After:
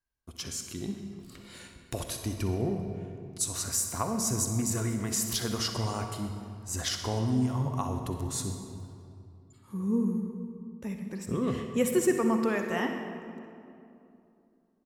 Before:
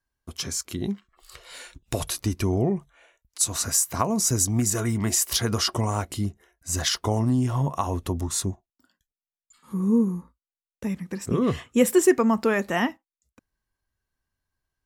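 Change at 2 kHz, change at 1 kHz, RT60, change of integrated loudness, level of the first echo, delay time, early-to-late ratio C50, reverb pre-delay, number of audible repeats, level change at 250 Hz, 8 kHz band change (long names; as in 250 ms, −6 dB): −6.0 dB, −6.0 dB, 2.7 s, −6.5 dB, −13.5 dB, 63 ms, 5.0 dB, 38 ms, 1, −5.5 dB, −7.0 dB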